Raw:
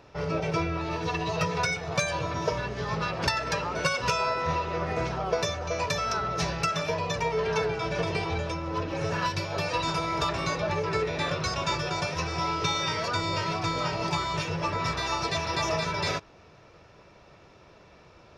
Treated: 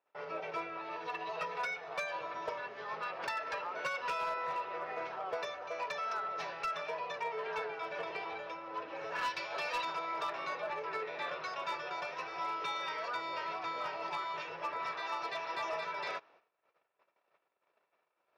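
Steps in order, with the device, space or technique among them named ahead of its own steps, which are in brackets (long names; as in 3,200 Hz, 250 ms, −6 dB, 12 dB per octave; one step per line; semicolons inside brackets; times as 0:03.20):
0:09.15–0:09.85: high-shelf EQ 2,000 Hz +9 dB
walkie-talkie (band-pass filter 590–2,700 Hz; hard clipping −23.5 dBFS, distortion −21 dB; noise gate −55 dBFS, range −22 dB)
level −6.5 dB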